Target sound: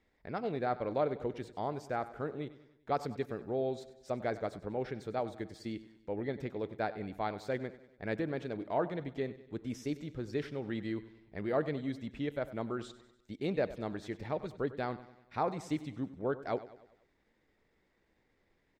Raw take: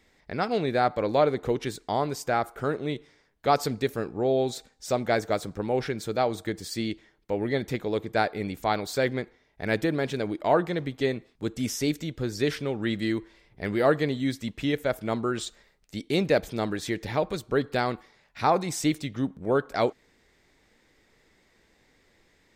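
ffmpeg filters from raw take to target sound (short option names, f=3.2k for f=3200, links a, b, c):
-filter_complex "[0:a]lowpass=f=1.9k:p=1,atempo=1.2,asplit=2[a][b];[b]aecho=0:1:97|194|291|388|485:0.158|0.0808|0.0412|0.021|0.0107[c];[a][c]amix=inputs=2:normalize=0,volume=-9dB"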